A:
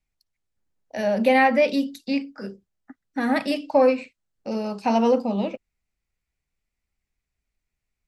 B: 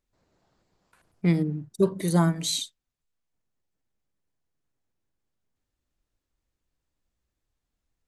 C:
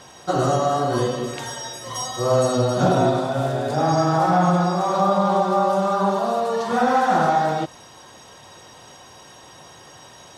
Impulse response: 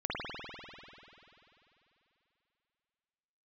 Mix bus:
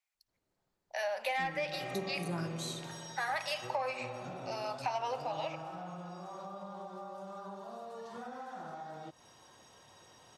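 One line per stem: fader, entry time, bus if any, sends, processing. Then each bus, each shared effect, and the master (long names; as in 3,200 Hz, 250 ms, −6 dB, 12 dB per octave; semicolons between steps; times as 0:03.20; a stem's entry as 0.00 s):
−2.5 dB, 0.00 s, send −20 dB, inverse Chebyshev high-pass filter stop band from 340 Hz, stop band 40 dB; soft clipping −15 dBFS, distortion −16 dB
−16.0 dB, 0.15 s, send −11.5 dB, no processing
−14.5 dB, 1.45 s, no send, downward compressor 5 to 1, threshold −29 dBFS, peak gain reduction 14 dB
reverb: on, RT60 3.1 s, pre-delay 49 ms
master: downward compressor 12 to 1, threshold −31 dBFS, peak gain reduction 12 dB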